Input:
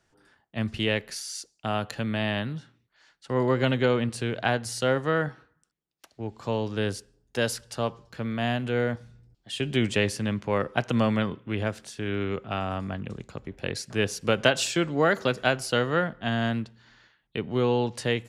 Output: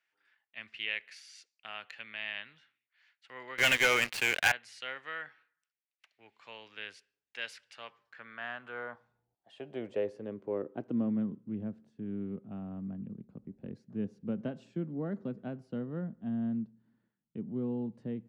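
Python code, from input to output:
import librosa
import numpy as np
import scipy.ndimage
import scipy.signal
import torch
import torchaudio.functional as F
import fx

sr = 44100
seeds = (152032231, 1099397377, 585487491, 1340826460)

y = fx.filter_sweep_bandpass(x, sr, from_hz=2300.0, to_hz=210.0, start_s=7.76, end_s=11.39, q=2.8)
y = fx.leveller(y, sr, passes=5, at=(3.58, 4.52))
y = y * librosa.db_to_amplitude(-2.0)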